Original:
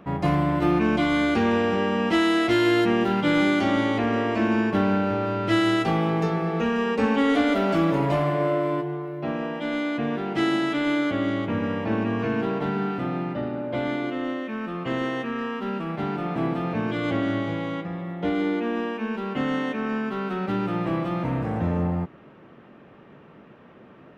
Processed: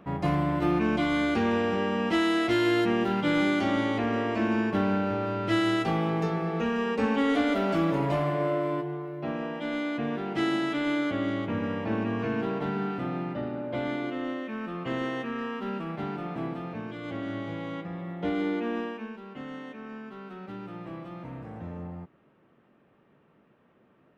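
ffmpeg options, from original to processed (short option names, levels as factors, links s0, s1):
-af "volume=1.58,afade=t=out:st=15.73:d=1.25:silence=0.398107,afade=t=in:st=16.98:d=1.1:silence=0.398107,afade=t=out:st=18.76:d=0.42:silence=0.316228"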